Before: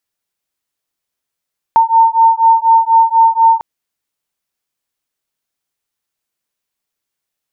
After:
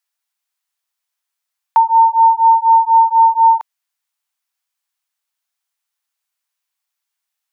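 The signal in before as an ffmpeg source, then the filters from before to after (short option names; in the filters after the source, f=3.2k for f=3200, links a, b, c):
-f lavfi -i "aevalsrc='0.335*(sin(2*PI*905*t)+sin(2*PI*909.1*t))':d=1.85:s=44100"
-af "highpass=f=750:w=0.5412,highpass=f=750:w=1.3066"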